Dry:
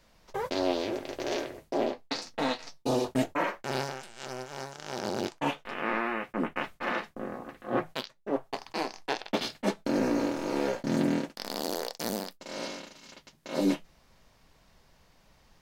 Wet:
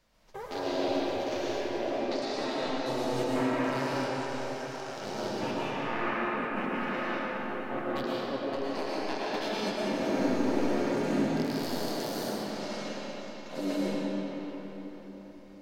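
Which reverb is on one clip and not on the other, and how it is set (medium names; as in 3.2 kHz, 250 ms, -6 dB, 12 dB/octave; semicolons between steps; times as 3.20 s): algorithmic reverb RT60 4.6 s, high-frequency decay 0.65×, pre-delay 75 ms, DRR -8 dB; trim -8 dB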